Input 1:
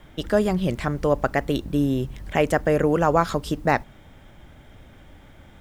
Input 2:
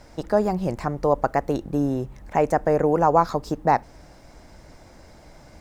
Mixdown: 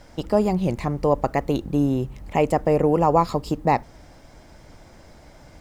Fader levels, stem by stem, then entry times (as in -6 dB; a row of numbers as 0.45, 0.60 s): -7.0, -0.5 dB; 0.00, 0.00 s